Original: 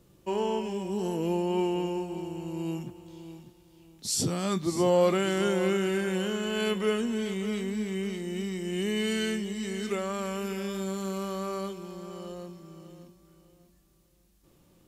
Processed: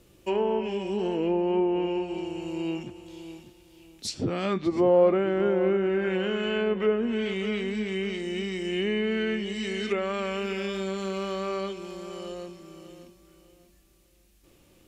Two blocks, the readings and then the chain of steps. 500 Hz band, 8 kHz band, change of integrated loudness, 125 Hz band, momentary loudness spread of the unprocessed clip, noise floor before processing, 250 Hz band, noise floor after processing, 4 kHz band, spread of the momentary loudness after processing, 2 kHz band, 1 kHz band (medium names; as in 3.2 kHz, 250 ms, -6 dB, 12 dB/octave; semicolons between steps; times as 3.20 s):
+3.5 dB, -9.5 dB, +2.5 dB, -1.5 dB, 15 LU, -62 dBFS, +1.5 dB, -60 dBFS, 0.0 dB, 14 LU, +2.5 dB, +1.0 dB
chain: fifteen-band graphic EQ 160 Hz -9 dB, 1 kHz -4 dB, 2.5 kHz +5 dB; low-pass that closes with the level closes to 1.1 kHz, closed at -24.5 dBFS; trim +4.5 dB